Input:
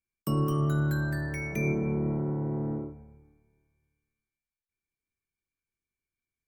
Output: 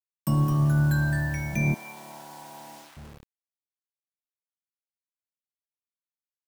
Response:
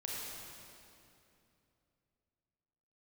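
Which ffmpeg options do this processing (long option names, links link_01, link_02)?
-filter_complex "[0:a]aecho=1:1:1.2:0.85,acrusher=bits=7:mix=0:aa=0.000001,asettb=1/sr,asplit=3[link_01][link_02][link_03];[link_01]atrim=end=1.744[link_04];[link_02]atrim=start=1.74:end=2.97,asetpts=PTS-STARTPTS,afade=type=in:duration=0.004:curve=qsin,afade=type=out:start_time=1.226:duration=0.004:curve=qsin,highpass=900[link_05];[link_03]atrim=start=2.966[link_06];[link_04][link_05]acrossfade=duration=0.004:curve1=hsin:curve2=qsin[link_07];[link_07][link_06]acrossfade=duration=0.004:curve1=qsin:curve2=hsin,volume=1.5dB"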